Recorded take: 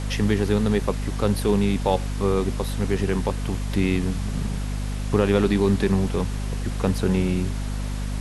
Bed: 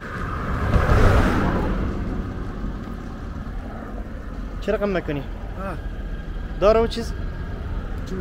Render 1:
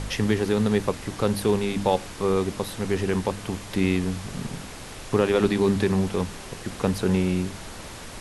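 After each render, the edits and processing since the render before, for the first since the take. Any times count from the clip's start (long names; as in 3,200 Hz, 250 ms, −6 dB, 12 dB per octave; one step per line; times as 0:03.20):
hum removal 50 Hz, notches 6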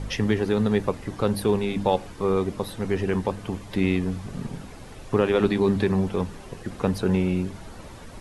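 broadband denoise 10 dB, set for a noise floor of −39 dBFS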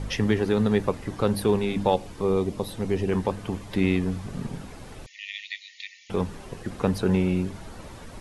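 0:01.94–0:03.12: dynamic equaliser 1,500 Hz, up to −8 dB, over −46 dBFS, Q 1.4
0:05.06–0:06.10: linear-phase brick-wall band-pass 1,800–7,100 Hz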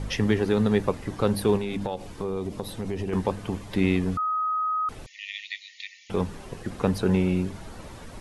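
0:01.57–0:03.13: downward compressor, threshold −25 dBFS
0:04.17–0:04.89: beep over 1,260 Hz −23 dBFS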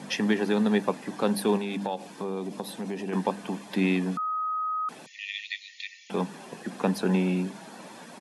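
Butterworth high-pass 180 Hz 36 dB per octave
comb filter 1.2 ms, depth 31%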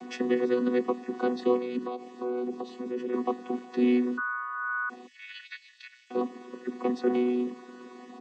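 channel vocoder with a chord as carrier bare fifth, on B3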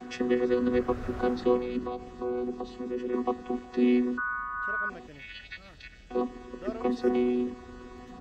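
mix in bed −23.5 dB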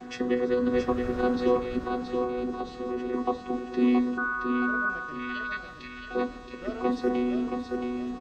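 repeating echo 673 ms, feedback 32%, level −5.5 dB
rectangular room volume 150 cubic metres, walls furnished, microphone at 0.45 metres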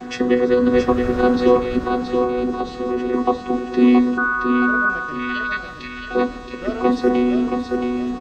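level +9.5 dB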